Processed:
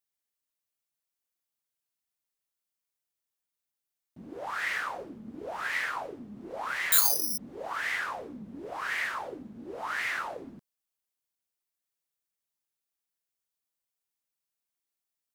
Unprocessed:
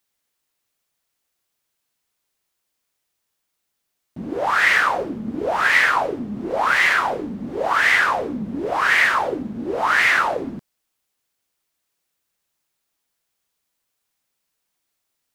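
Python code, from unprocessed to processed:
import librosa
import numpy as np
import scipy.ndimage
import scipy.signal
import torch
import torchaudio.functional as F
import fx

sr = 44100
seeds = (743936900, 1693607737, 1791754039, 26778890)

y = fx.resample_bad(x, sr, factor=8, down='none', up='zero_stuff', at=(6.92, 7.38))
y = fx.high_shelf(y, sr, hz=6900.0, db=6.5)
y = y * 10.0 ** (-16.0 / 20.0)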